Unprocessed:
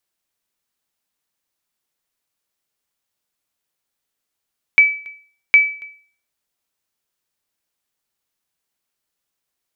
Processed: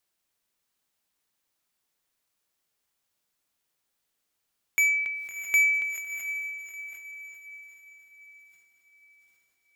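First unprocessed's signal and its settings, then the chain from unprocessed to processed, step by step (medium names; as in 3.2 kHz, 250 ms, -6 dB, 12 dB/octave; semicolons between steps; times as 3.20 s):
sonar ping 2.3 kHz, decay 0.45 s, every 0.76 s, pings 2, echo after 0.28 s, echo -27 dB -3 dBFS
saturation -20 dBFS; echo that smears into a reverb 689 ms, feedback 42%, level -9.5 dB; decay stretcher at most 41 dB/s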